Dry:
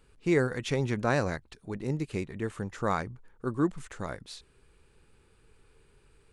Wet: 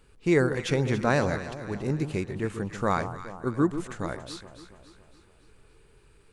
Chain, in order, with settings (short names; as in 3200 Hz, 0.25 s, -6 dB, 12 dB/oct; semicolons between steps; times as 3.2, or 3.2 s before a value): echo with dull and thin repeats by turns 0.14 s, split 1100 Hz, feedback 71%, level -9.5 dB; gain +3 dB